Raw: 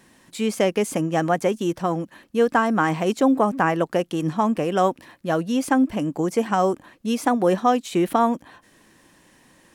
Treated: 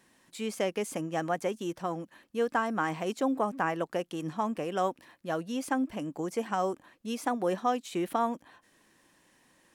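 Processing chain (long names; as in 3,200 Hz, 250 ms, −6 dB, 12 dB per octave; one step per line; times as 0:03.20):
low-shelf EQ 280 Hz −5.5 dB
level −8.5 dB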